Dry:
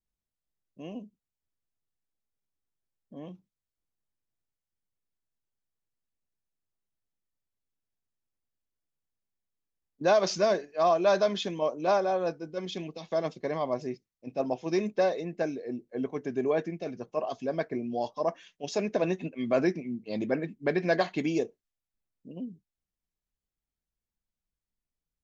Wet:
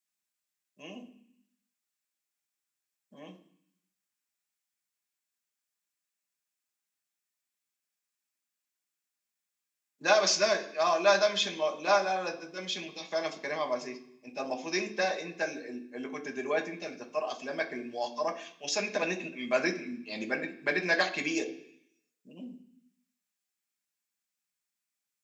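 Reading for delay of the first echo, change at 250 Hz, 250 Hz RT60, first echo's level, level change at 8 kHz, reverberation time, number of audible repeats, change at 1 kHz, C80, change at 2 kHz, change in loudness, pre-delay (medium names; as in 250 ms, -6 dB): no echo, -6.0 dB, 0.95 s, no echo, no reading, 0.65 s, no echo, -0.5 dB, 16.5 dB, +6.5 dB, -1.0 dB, 3 ms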